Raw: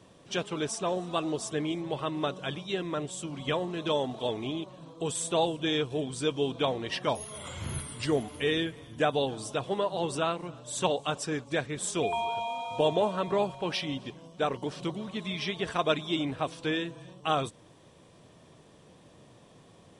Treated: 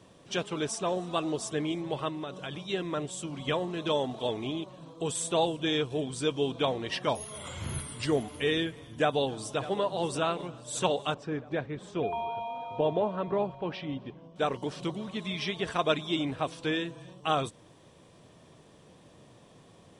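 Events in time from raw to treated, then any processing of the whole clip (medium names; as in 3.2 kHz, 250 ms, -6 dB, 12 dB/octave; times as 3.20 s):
2.08–2.63 s: compression, threshold -33 dBFS
8.85–9.82 s: echo throw 600 ms, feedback 70%, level -15.5 dB
11.14–14.36 s: tape spacing loss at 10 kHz 31 dB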